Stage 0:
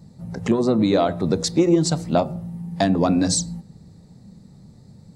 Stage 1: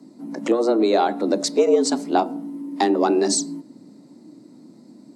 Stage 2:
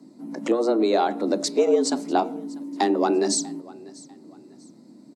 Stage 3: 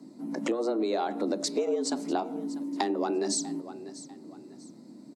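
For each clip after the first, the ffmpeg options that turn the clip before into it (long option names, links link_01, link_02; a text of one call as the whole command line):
ffmpeg -i in.wav -af "afreqshift=110" out.wav
ffmpeg -i in.wav -af "aecho=1:1:644|1288:0.0794|0.0254,volume=-2.5dB" out.wav
ffmpeg -i in.wav -af "acompressor=threshold=-26dB:ratio=5" out.wav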